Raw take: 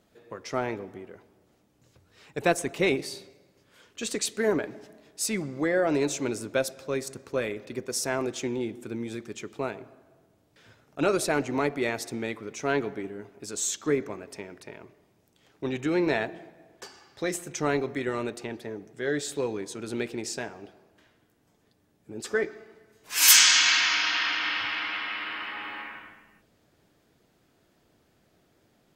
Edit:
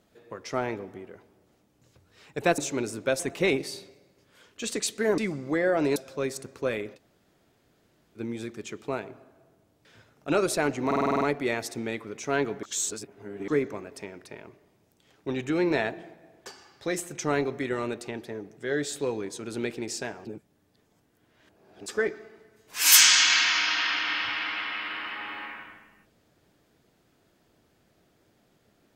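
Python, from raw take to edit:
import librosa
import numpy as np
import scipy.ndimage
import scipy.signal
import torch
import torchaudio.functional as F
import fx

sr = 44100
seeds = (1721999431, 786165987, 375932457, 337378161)

y = fx.edit(x, sr, fx.cut(start_s=4.57, length_s=0.71),
    fx.move(start_s=6.06, length_s=0.61, to_s=2.58),
    fx.room_tone_fill(start_s=7.67, length_s=1.22, crossfade_s=0.06),
    fx.stutter(start_s=11.57, slice_s=0.05, count=8),
    fx.reverse_span(start_s=12.99, length_s=0.85),
    fx.reverse_span(start_s=20.61, length_s=1.61), tone=tone)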